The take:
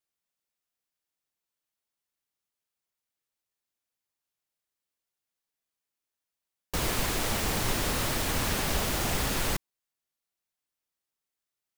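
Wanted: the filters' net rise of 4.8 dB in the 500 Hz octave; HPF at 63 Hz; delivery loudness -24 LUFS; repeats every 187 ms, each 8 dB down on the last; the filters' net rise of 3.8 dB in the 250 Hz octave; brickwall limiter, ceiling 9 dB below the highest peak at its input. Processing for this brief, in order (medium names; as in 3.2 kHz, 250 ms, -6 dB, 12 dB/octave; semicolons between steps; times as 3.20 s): high-pass 63 Hz; peaking EQ 250 Hz +3.5 dB; peaking EQ 500 Hz +5 dB; peak limiter -25 dBFS; feedback delay 187 ms, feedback 40%, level -8 dB; trim +9.5 dB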